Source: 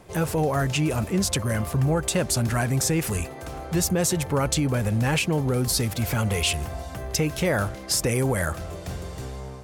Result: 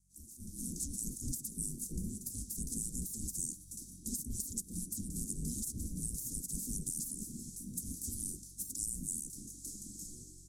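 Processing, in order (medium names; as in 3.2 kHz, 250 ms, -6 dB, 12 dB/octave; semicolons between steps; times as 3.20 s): comb filter that takes the minimum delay 1.4 ms; spectral gate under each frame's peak -20 dB weak; mains buzz 50 Hz, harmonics 4, -68 dBFS; inverse Chebyshev band-stop 820–2600 Hz, stop band 70 dB; treble shelf 8.4 kHz -4.5 dB; compression, threshold -43 dBFS, peak gain reduction 9 dB; delay 309 ms -23.5 dB; level rider gain up to 16.5 dB; speed mistake 48 kHz file played as 44.1 kHz; low-pass 11 kHz 12 dB/octave; peaking EQ 2 kHz -3.5 dB 1.5 oct; trim -6.5 dB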